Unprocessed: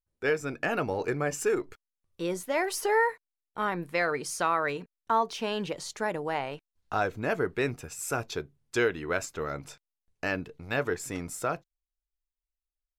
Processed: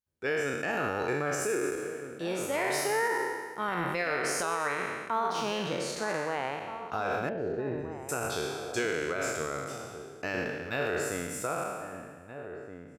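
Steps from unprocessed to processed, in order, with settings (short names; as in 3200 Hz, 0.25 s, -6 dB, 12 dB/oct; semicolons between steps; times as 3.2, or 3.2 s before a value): spectral trails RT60 1.55 s; HPF 68 Hz; 3.68–4.55 transient shaper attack +6 dB, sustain +10 dB; limiter -17 dBFS, peak gain reduction 8.5 dB; 7.29–8.09 running mean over 40 samples; outdoor echo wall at 270 m, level -9 dB; gain -3.5 dB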